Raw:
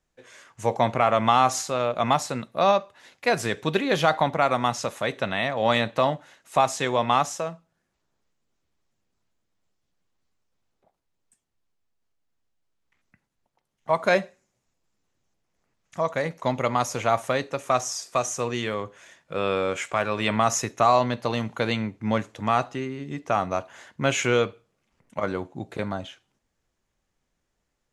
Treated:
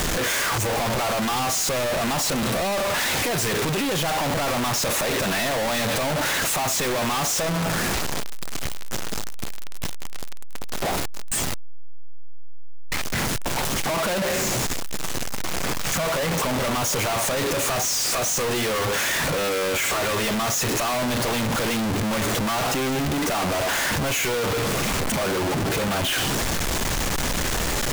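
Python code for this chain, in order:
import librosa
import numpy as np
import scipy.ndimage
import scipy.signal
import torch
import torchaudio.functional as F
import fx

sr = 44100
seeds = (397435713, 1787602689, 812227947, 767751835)

y = np.sign(x) * np.sqrt(np.mean(np.square(x)))
y = F.gain(torch.from_numpy(y), 3.5).numpy()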